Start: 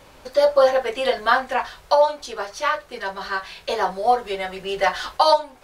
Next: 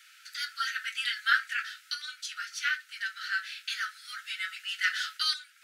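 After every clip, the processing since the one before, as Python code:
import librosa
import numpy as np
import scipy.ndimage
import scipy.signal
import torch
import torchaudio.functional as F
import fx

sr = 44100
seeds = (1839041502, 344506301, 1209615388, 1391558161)

y = scipy.signal.sosfilt(scipy.signal.cheby1(10, 1.0, 1300.0, 'highpass', fs=sr, output='sos'), x)
y = y * librosa.db_to_amplitude(-1.5)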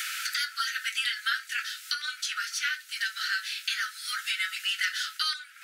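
y = fx.high_shelf(x, sr, hz=5400.0, db=8.0)
y = fx.band_squash(y, sr, depth_pct=100)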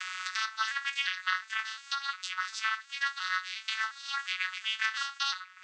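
y = fx.vocoder_arp(x, sr, chord='minor triad', root=54, every_ms=355)
y = y * librosa.db_to_amplitude(-1.5)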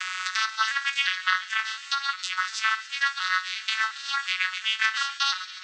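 y = fx.echo_wet_highpass(x, sr, ms=138, feedback_pct=79, hz=2700.0, wet_db=-14.0)
y = y * librosa.db_to_amplitude(6.5)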